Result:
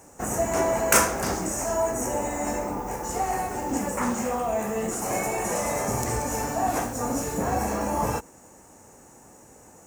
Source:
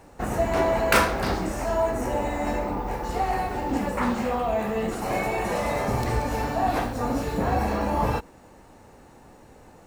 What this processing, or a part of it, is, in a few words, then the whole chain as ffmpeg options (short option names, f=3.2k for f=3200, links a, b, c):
budget condenser microphone: -af "highpass=f=98:p=1,highshelf=f=5.2k:t=q:w=3:g=8.5,volume=-1dB"